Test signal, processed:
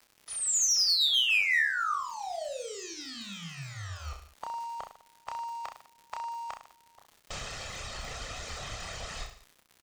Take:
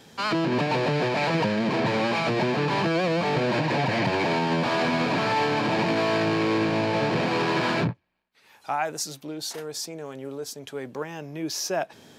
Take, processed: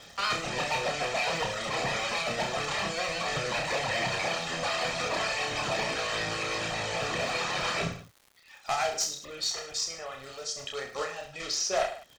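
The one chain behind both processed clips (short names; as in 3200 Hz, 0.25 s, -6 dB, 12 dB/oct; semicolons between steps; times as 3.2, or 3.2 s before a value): block floating point 3-bit; reverb removal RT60 1.2 s; steep low-pass 7500 Hz 36 dB/oct; bell 210 Hz -9 dB 2.4 oct; harmonic-percussive split harmonic -12 dB; comb 1.6 ms, depth 48%; in parallel at -1 dB: compressor, threshold -45 dBFS; on the sum: one-sided clip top -24.5 dBFS; crackle 87/s -43 dBFS; on a send: reverse bouncing-ball echo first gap 30 ms, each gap 1.15×, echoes 5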